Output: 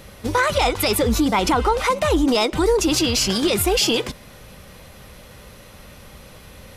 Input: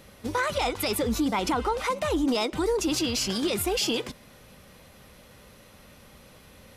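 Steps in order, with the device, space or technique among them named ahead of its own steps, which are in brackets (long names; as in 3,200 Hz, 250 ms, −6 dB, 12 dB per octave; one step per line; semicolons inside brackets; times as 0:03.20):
low shelf boost with a cut just above (low-shelf EQ 78 Hz +6 dB; parametric band 250 Hz −3 dB 0.59 octaves)
level +8 dB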